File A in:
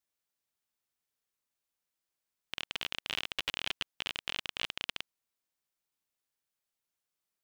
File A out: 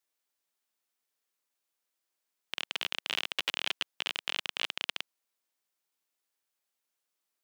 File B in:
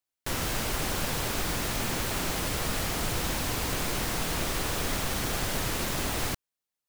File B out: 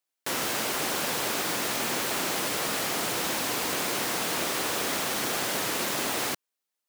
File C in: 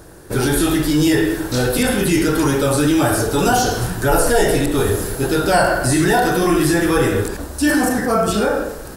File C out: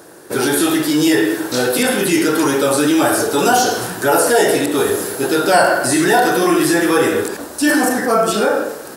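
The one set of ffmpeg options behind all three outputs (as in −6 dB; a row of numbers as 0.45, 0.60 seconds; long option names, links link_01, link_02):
-af "highpass=260,volume=3dB"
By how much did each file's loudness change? +3.0, +2.5, +2.0 LU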